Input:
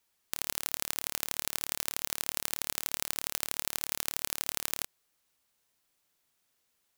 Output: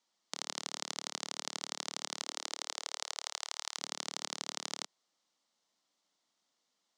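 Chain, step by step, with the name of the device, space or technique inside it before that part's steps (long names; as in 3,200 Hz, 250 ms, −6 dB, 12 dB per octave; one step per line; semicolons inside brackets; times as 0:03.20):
0:02.20–0:03.77: high-pass filter 270 Hz → 840 Hz 24 dB per octave
television speaker (loudspeaker in its box 190–6,600 Hz, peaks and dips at 410 Hz −7 dB, 1,600 Hz −8 dB, 2,500 Hz −9 dB)
level +1 dB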